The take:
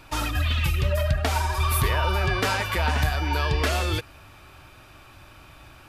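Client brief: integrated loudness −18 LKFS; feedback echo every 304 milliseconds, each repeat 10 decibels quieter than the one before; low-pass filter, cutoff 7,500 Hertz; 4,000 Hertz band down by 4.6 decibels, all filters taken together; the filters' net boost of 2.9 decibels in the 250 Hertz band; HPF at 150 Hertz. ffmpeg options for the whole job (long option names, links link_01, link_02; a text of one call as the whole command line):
ffmpeg -i in.wav -af "highpass=150,lowpass=7500,equalizer=frequency=250:width_type=o:gain=5,equalizer=frequency=4000:width_type=o:gain=-6,aecho=1:1:304|608|912|1216:0.316|0.101|0.0324|0.0104,volume=9dB" out.wav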